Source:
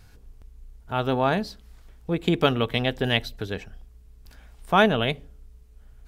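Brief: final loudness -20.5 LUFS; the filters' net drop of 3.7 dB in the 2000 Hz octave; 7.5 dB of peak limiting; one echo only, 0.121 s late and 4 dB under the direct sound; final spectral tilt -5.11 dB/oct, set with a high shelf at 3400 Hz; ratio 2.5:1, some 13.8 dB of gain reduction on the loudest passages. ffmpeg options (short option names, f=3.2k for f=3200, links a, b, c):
-af "equalizer=f=2k:t=o:g=-4,highshelf=f=3.4k:g=-3.5,acompressor=threshold=-36dB:ratio=2.5,alimiter=level_in=3dB:limit=-24dB:level=0:latency=1,volume=-3dB,aecho=1:1:121:0.631,volume=18dB"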